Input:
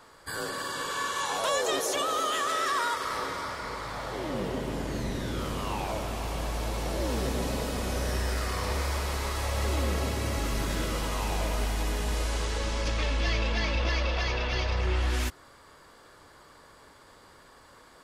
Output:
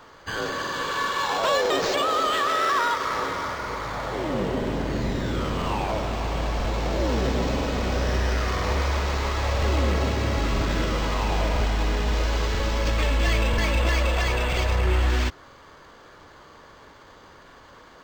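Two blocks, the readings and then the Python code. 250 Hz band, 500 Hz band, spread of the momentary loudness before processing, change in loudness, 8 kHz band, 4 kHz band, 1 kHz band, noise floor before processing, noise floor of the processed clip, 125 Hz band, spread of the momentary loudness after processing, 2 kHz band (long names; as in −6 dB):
+6.0 dB, +6.0 dB, 6 LU, +5.5 dB, −1.5 dB, +4.0 dB, +6.0 dB, −55 dBFS, −49 dBFS, +6.0 dB, 6 LU, +5.5 dB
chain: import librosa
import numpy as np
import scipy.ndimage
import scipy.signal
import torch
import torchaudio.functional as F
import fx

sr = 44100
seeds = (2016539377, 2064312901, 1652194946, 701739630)

y = fx.buffer_crackle(x, sr, first_s=0.62, period_s=0.99, block=2048, kind='repeat')
y = np.interp(np.arange(len(y)), np.arange(len(y))[::4], y[::4])
y = F.gain(torch.from_numpy(y), 6.0).numpy()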